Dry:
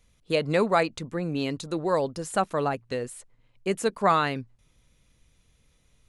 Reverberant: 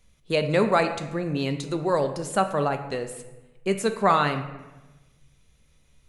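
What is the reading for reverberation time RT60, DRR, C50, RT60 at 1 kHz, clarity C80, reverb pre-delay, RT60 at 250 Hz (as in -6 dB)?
1.1 s, 6.5 dB, 10.0 dB, 1.1 s, 11.5 dB, 5 ms, 1.3 s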